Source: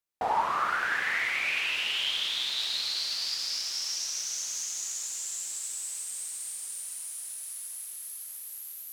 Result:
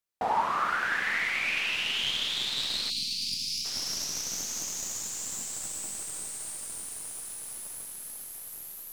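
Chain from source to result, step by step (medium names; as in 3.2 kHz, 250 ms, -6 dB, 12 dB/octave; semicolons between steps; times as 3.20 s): tracing distortion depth 0.022 ms; 2.90–3.65 s: Chebyshev band-stop 270–2400 Hz, order 4; dynamic bell 210 Hz, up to +5 dB, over -59 dBFS, Q 1.8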